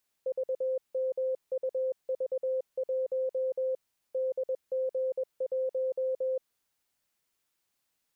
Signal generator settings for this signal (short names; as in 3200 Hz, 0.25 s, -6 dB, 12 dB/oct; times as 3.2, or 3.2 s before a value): Morse "VMUV1 DG1" 21 wpm 520 Hz -27 dBFS